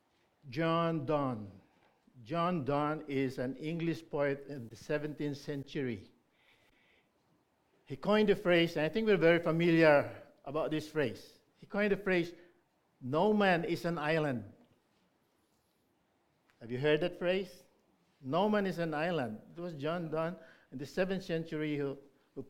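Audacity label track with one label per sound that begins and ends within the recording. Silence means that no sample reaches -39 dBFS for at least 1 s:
7.910000	14.420000	sound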